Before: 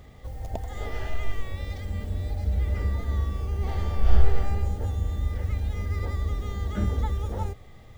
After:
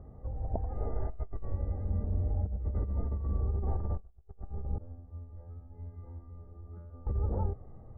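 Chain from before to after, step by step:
Bessel low-pass filter 760 Hz, order 8
compressor whose output falls as the input rises −27 dBFS, ratio −0.5
0:04.78–0:07.07: tuned comb filter 85 Hz, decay 0.88 s, harmonics all, mix 100%
level −4.5 dB

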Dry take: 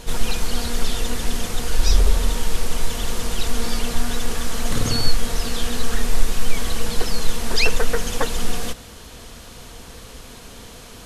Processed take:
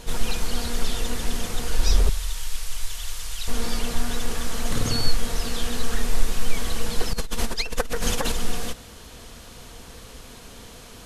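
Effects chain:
0:02.09–0:03.48: guitar amp tone stack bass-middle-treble 10-0-10
0:07.13–0:08.32: compressor whose output falls as the input rises −20 dBFS, ratio −1
level −3 dB

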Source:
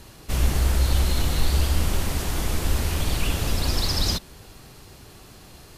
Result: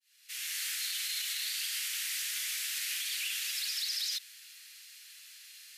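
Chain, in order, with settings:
fade in at the beginning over 0.64 s
Butterworth high-pass 1,800 Hz 36 dB per octave
brickwall limiter −25.5 dBFS, peak gain reduction 10.5 dB

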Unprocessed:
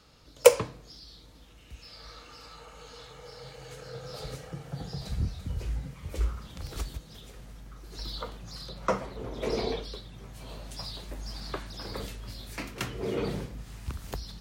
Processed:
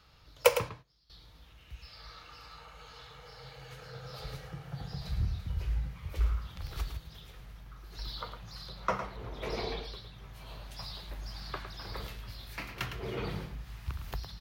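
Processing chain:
0:00.58–0:01.10: noise gate −38 dBFS, range −19 dB
octave-band graphic EQ 250/500/8,000 Hz −10/−6/−12 dB
on a send: single-tap delay 108 ms −9 dB

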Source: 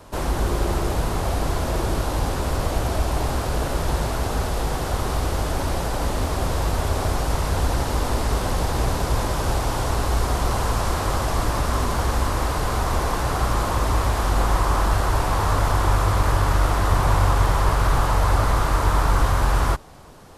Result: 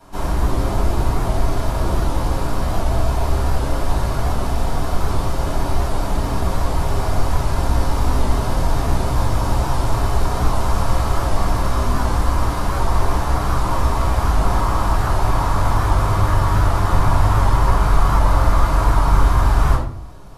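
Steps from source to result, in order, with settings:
rectangular room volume 560 cubic metres, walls furnished, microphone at 7.9 metres
wow of a warped record 78 rpm, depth 100 cents
level −10 dB

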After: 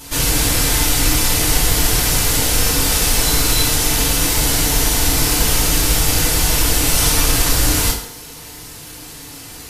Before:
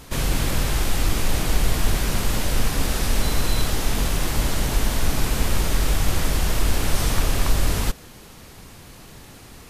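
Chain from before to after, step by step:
high-shelf EQ 3,000 Hz +11.5 dB
feedback delay network reverb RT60 0.69 s, low-frequency decay 0.75×, high-frequency decay 0.75×, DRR −5.5 dB
level −2 dB

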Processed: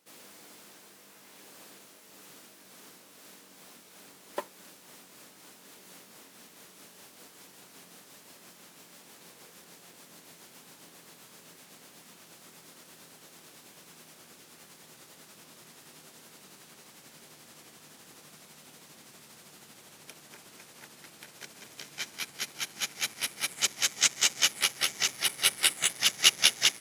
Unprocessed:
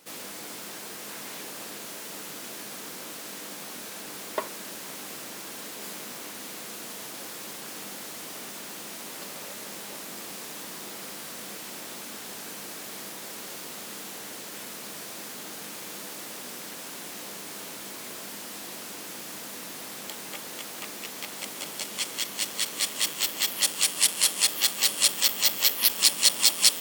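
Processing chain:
pitch glide at a constant tempo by −7 semitones starting unshifted
expander for the loud parts 1.5 to 1, over −42 dBFS

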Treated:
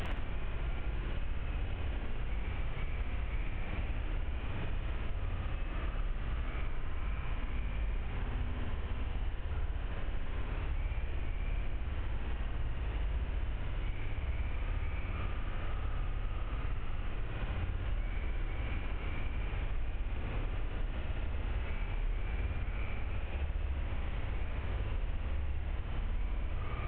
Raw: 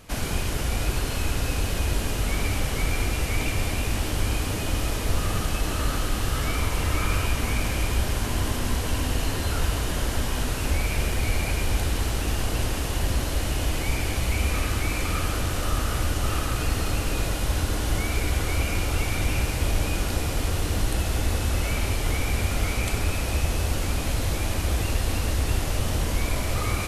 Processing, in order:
linear delta modulator 16 kbit/s, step −28 dBFS
low-shelf EQ 67 Hz +12 dB
flutter between parallel walls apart 9.9 metres, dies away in 1.2 s
downward compressor 6 to 1, threshold −34 dBFS, peak gain reduction 25 dB

